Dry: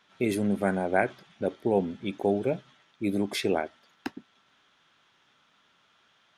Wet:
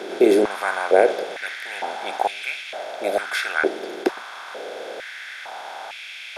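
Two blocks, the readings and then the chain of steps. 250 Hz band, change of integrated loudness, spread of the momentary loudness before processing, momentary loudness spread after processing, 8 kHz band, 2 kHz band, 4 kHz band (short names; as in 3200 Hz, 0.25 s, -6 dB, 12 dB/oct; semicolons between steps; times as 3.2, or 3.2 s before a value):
+2.0 dB, +6.0 dB, 13 LU, 17 LU, +7.0 dB, +11.0 dB, +9.5 dB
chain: per-bin compression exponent 0.4; stepped high-pass 2.2 Hz 370–2400 Hz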